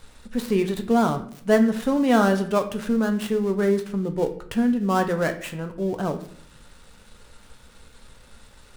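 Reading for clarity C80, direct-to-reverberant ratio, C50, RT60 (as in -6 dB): 15.5 dB, 6.0 dB, 12.0 dB, 0.60 s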